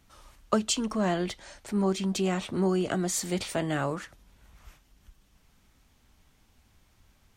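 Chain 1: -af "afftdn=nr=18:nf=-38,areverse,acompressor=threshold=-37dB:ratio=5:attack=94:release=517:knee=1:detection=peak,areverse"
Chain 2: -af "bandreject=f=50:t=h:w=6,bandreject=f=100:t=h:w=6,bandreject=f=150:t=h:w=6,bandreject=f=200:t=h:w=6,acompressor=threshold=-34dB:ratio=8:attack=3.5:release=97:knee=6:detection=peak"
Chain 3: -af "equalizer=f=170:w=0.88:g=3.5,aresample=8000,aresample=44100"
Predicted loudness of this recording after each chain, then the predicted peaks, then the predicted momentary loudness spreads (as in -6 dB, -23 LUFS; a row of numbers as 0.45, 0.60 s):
-37.5, -38.5, -27.5 LUFS; -22.0, -24.0, -9.0 dBFS; 5, 19, 7 LU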